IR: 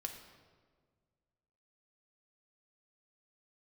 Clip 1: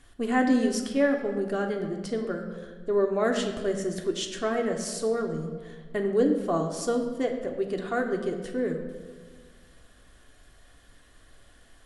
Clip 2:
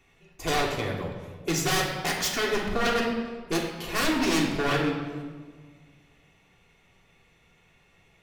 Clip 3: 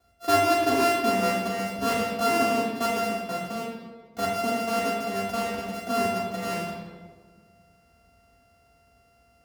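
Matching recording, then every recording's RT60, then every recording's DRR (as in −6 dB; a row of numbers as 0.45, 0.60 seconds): 1; 1.7, 1.6, 1.6 seconds; 2.5, −2.5, −12.0 decibels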